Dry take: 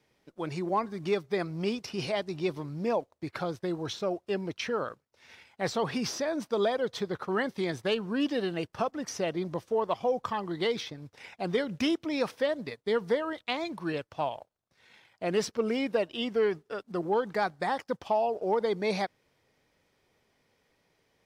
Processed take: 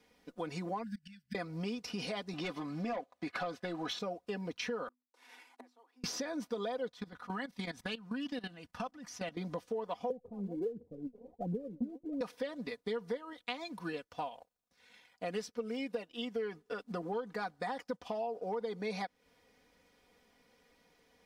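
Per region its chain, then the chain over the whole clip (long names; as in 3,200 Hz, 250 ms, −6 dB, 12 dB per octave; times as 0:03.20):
0:00.83–0:01.35: EQ curve with evenly spaced ripples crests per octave 1.3, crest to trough 8 dB + gate with flip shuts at −26 dBFS, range −25 dB + linear-phase brick-wall band-stop 260–1,400 Hz
0:02.33–0:03.99: notch comb filter 470 Hz + mid-hump overdrive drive 16 dB, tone 2,900 Hz, clips at −18.5 dBFS
0:04.88–0:06.04: variable-slope delta modulation 64 kbit/s + gate with flip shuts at −30 dBFS, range −33 dB + Chebyshev high-pass with heavy ripple 240 Hz, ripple 9 dB
0:06.89–0:09.37: parametric band 440 Hz −10.5 dB 0.72 octaves + output level in coarse steps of 17 dB
0:10.10–0:12.21: Butterworth low-pass 570 Hz + phase shifter 1.4 Hz, delay 5 ms, feedback 75%
0:13.17–0:16.42: high-shelf EQ 4,400 Hz +5 dB + expander for the loud parts, over −37 dBFS
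whole clip: comb filter 4.1 ms, depth 73%; downward compressor 4 to 1, threshold −38 dBFS; level +1 dB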